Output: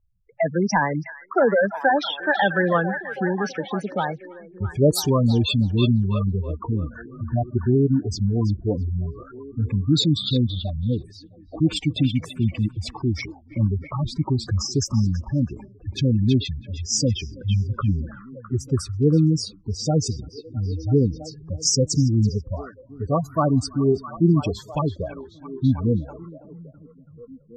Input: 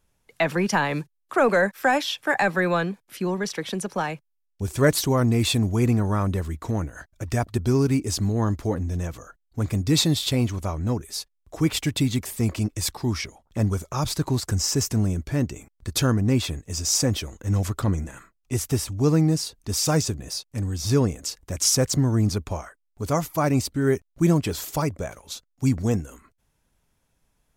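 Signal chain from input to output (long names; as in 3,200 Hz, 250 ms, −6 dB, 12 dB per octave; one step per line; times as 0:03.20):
gate on every frequency bin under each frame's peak −10 dB strong
parametric band 1,100 Hz +4 dB 0.39 octaves
on a send: echo through a band-pass that steps 329 ms, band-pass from 2,700 Hz, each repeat −0.7 octaves, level −5 dB
on the sum: low-pass that shuts in the quiet parts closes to 880 Hz, open at −18 dBFS
level +2.5 dB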